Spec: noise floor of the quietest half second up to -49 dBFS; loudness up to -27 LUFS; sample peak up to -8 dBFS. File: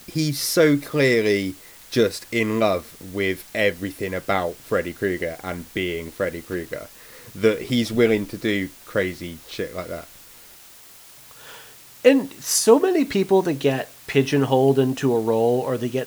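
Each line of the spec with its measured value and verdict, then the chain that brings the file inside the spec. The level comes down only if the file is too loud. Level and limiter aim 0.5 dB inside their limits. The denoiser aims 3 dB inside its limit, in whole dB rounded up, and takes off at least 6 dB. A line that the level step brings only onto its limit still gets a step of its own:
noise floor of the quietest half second -46 dBFS: fail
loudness -21.5 LUFS: fail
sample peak -2.5 dBFS: fail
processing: trim -6 dB

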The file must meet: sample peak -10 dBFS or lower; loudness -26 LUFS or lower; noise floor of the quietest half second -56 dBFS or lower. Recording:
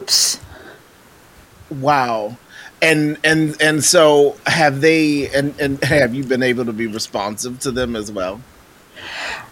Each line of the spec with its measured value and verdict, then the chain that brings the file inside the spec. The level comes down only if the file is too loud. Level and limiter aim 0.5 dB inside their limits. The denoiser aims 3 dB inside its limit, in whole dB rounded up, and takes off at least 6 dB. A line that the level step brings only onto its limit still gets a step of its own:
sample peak -1.5 dBFS: fail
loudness -16.0 LUFS: fail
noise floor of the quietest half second -47 dBFS: fail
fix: trim -10.5 dB

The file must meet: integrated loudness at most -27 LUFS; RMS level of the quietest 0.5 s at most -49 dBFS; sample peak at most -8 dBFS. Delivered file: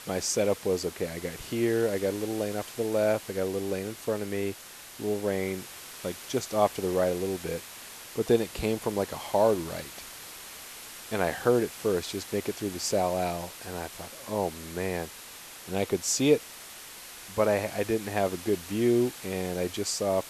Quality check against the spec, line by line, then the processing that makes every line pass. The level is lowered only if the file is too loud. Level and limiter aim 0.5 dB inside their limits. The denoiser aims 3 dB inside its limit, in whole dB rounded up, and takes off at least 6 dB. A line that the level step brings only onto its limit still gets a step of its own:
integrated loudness -29.0 LUFS: pass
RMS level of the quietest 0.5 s -45 dBFS: fail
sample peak -9.0 dBFS: pass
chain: noise reduction 7 dB, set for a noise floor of -45 dBFS

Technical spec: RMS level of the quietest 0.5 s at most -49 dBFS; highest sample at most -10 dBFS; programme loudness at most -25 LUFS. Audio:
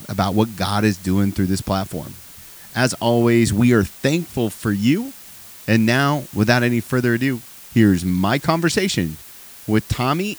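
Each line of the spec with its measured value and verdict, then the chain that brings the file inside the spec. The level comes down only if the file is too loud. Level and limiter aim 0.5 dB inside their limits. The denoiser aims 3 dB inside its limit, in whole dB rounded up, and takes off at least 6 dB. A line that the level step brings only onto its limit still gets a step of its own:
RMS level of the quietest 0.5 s -41 dBFS: fail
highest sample -2.5 dBFS: fail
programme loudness -19.0 LUFS: fail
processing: noise reduction 6 dB, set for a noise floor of -41 dBFS; trim -6.5 dB; peak limiter -10.5 dBFS

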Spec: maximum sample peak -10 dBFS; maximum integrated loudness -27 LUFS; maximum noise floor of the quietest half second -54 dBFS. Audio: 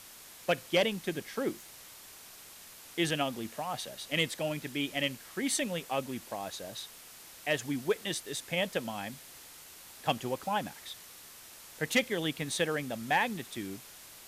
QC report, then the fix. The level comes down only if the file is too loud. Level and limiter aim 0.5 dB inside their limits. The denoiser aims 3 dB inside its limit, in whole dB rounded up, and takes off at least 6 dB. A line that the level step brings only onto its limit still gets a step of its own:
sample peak -15.0 dBFS: pass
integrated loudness -33.5 LUFS: pass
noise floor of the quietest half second -51 dBFS: fail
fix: noise reduction 6 dB, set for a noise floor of -51 dBFS

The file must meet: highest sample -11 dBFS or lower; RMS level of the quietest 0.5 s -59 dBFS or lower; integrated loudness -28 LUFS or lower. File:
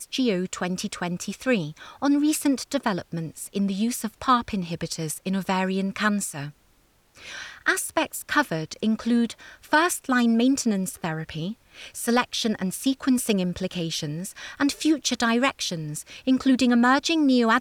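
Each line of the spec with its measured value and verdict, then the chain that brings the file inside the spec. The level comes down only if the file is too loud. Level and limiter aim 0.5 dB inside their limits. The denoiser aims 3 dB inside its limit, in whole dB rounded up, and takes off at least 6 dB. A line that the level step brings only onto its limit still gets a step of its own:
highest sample -10.0 dBFS: fail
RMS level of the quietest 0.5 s -62 dBFS: pass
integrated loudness -24.5 LUFS: fail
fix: trim -4 dB

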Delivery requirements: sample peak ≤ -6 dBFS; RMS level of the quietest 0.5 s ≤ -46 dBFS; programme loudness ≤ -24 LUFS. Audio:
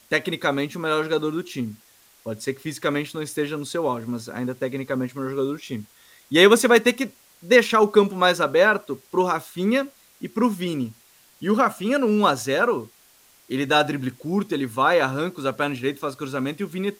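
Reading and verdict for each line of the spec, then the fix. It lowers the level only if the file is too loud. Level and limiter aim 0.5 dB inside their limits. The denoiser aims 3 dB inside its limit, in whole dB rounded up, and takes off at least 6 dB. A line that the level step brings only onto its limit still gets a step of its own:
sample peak -3.0 dBFS: fail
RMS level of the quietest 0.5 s -55 dBFS: pass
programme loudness -22.5 LUFS: fail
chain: trim -2 dB; peak limiter -6.5 dBFS

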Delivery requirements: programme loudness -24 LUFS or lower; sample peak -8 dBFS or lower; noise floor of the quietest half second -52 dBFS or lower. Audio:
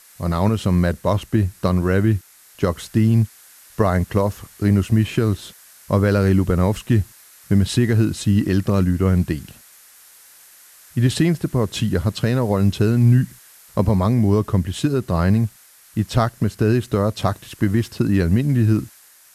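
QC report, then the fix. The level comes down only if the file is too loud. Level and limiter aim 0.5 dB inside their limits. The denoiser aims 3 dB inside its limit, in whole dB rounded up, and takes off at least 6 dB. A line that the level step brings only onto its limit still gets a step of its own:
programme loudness -19.5 LUFS: fail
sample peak -5.5 dBFS: fail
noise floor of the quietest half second -48 dBFS: fail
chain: trim -5 dB

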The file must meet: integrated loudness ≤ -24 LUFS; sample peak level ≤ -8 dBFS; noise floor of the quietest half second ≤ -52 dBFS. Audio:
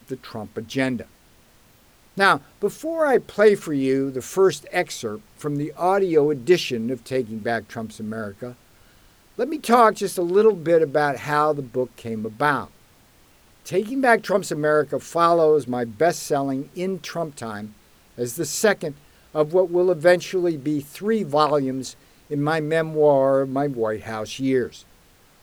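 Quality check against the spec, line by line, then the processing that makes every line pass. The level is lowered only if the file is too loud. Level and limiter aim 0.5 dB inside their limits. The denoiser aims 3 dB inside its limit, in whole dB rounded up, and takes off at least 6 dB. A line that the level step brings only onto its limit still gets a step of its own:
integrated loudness -21.5 LUFS: fail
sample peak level -3.0 dBFS: fail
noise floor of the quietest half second -55 dBFS: pass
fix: trim -3 dB; peak limiter -8.5 dBFS

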